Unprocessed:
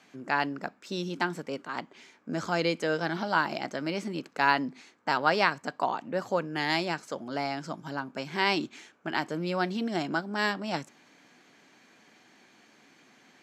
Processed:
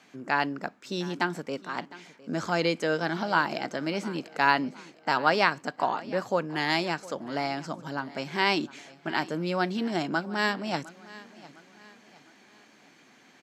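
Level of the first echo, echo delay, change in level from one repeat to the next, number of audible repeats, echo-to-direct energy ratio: -19.5 dB, 0.708 s, -7.5 dB, 3, -18.5 dB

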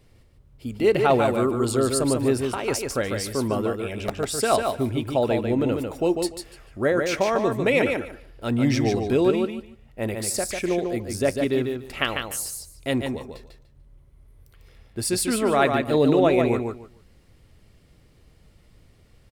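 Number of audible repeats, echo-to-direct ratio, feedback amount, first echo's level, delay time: 3, -5.0 dB, 19%, -5.0 dB, 0.147 s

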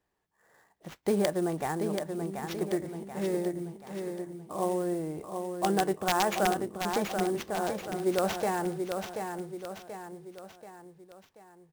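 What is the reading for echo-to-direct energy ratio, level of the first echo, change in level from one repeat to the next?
-5.0 dB, -6.0 dB, -6.5 dB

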